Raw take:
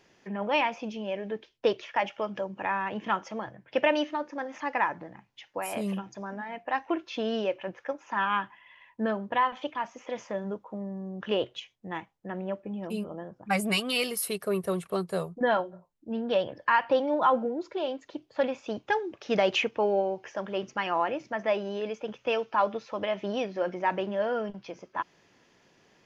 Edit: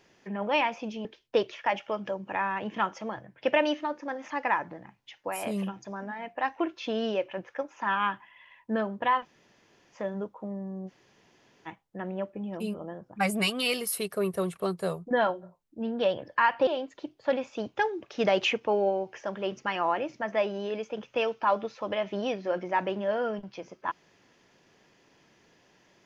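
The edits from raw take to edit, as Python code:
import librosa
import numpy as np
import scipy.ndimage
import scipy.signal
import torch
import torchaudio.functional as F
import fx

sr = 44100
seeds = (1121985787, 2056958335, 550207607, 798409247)

y = fx.edit(x, sr, fx.cut(start_s=1.05, length_s=0.3),
    fx.room_tone_fill(start_s=9.53, length_s=0.72, crossfade_s=0.06),
    fx.room_tone_fill(start_s=11.18, length_s=0.79, crossfade_s=0.04),
    fx.cut(start_s=16.97, length_s=0.81), tone=tone)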